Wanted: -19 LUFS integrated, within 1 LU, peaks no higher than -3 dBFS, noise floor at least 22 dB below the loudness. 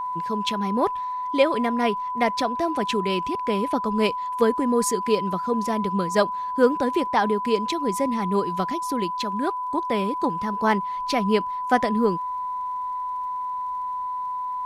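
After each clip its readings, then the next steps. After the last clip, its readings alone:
tick rate 49 per s; steady tone 1 kHz; tone level -26 dBFS; loudness -24.0 LUFS; peak level -6.0 dBFS; loudness target -19.0 LUFS
-> de-click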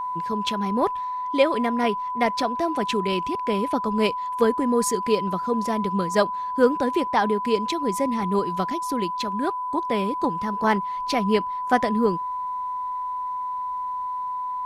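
tick rate 0.068 per s; steady tone 1 kHz; tone level -26 dBFS
-> band-stop 1 kHz, Q 30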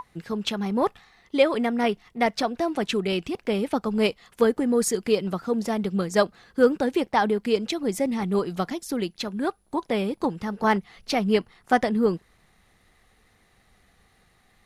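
steady tone not found; loudness -25.0 LUFS; peak level -6.5 dBFS; loudness target -19.0 LUFS
-> trim +6 dB; peak limiter -3 dBFS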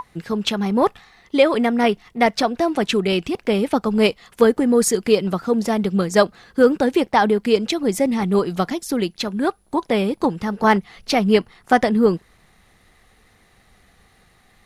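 loudness -19.5 LUFS; peak level -3.0 dBFS; noise floor -57 dBFS

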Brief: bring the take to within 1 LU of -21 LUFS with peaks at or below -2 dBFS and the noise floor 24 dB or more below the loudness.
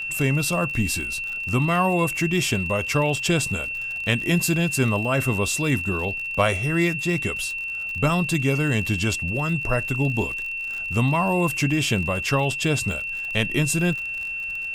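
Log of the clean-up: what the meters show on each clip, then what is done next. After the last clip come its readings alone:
tick rate 47 per s; steady tone 2.7 kHz; tone level -27 dBFS; loudness -22.5 LUFS; peak level -7.5 dBFS; loudness target -21.0 LUFS
-> de-click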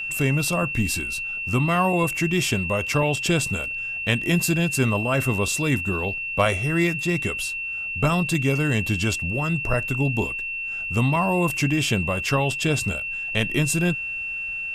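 tick rate 0.34 per s; steady tone 2.7 kHz; tone level -27 dBFS
-> band-stop 2.7 kHz, Q 30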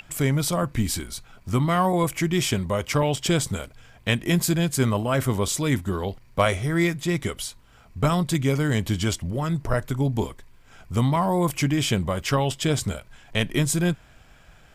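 steady tone not found; loudness -24.5 LUFS; peak level -8.5 dBFS; loudness target -21.0 LUFS
-> trim +3.5 dB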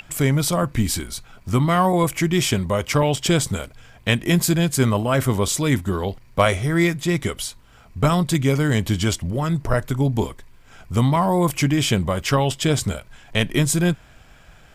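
loudness -21.0 LUFS; peak level -5.0 dBFS; noise floor -49 dBFS

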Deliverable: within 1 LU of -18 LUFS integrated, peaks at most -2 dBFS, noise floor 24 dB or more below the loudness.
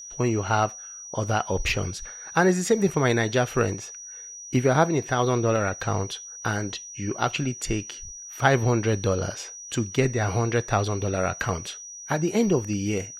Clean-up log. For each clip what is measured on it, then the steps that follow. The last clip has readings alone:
steady tone 5.8 kHz; tone level -38 dBFS; loudness -25.0 LUFS; peak level -5.0 dBFS; loudness target -18.0 LUFS
-> band-stop 5.8 kHz, Q 30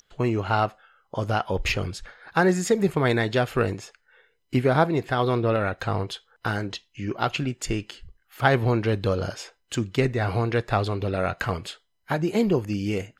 steady tone not found; loudness -25.5 LUFS; peak level -5.0 dBFS; loudness target -18.0 LUFS
-> trim +7.5 dB; peak limiter -2 dBFS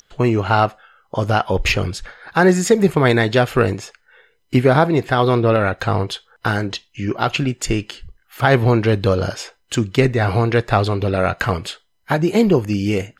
loudness -18.0 LUFS; peak level -2.0 dBFS; noise floor -63 dBFS

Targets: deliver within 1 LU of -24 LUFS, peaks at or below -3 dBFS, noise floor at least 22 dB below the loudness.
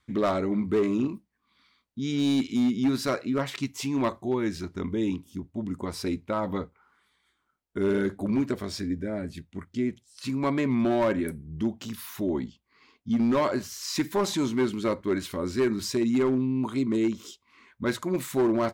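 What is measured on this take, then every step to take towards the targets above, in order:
clipped samples 1.1%; clipping level -18.5 dBFS; loudness -28.0 LUFS; peak level -18.5 dBFS; loudness target -24.0 LUFS
-> clip repair -18.5 dBFS; trim +4 dB

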